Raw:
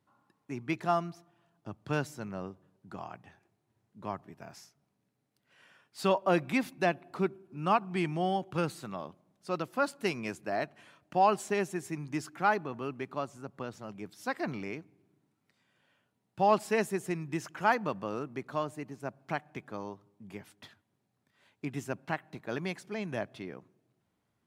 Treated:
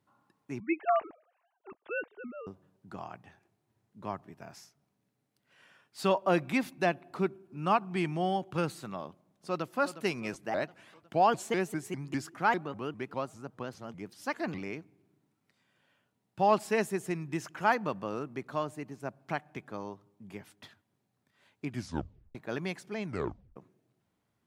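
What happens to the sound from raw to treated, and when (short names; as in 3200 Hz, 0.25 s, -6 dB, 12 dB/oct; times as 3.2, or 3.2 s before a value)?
0.6–2.47 sine-wave speech
9.07–9.73 echo throw 0.36 s, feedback 55%, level -12.5 dB
10.34–14.58 shaped vibrato saw up 5 Hz, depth 250 cents
21.69 tape stop 0.66 s
23.05 tape stop 0.51 s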